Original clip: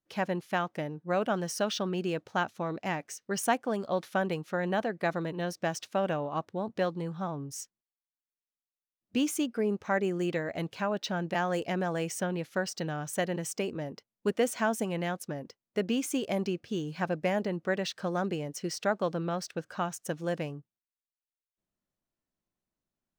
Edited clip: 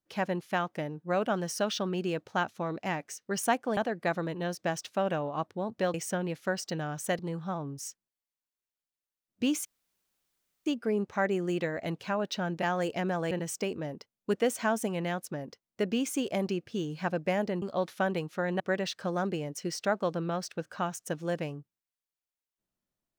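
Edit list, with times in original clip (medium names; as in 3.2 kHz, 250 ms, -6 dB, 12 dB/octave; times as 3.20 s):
3.77–4.75 s: move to 17.59 s
9.38 s: insert room tone 1.01 s
12.03–13.28 s: move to 6.92 s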